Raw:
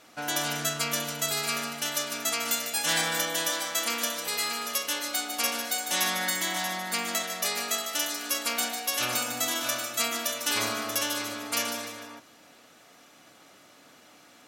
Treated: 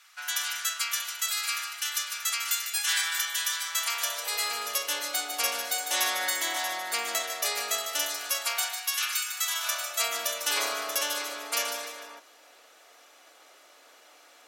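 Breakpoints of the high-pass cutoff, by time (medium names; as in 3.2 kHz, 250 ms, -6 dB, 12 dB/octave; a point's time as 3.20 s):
high-pass 24 dB/octave
3.62 s 1.2 kHz
4.56 s 370 Hz
8.02 s 370 Hz
9.23 s 1.5 kHz
10.21 s 400 Hz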